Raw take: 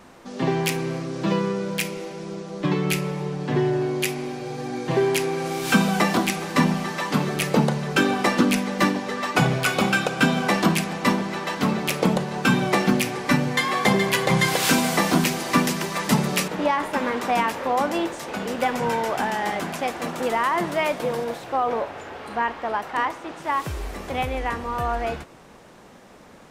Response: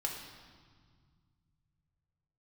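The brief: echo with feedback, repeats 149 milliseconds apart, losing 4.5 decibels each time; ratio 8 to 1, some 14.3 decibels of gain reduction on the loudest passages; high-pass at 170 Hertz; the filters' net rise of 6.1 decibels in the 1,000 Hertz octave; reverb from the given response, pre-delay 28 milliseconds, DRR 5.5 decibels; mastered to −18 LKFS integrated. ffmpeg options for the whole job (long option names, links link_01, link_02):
-filter_complex "[0:a]highpass=170,equalizer=frequency=1000:width_type=o:gain=7.5,acompressor=threshold=-28dB:ratio=8,aecho=1:1:149|298|447|596|745|894|1043|1192|1341:0.596|0.357|0.214|0.129|0.0772|0.0463|0.0278|0.0167|0.01,asplit=2[link_01][link_02];[1:a]atrim=start_sample=2205,adelay=28[link_03];[link_02][link_03]afir=irnorm=-1:irlink=0,volume=-8dB[link_04];[link_01][link_04]amix=inputs=2:normalize=0,volume=10.5dB"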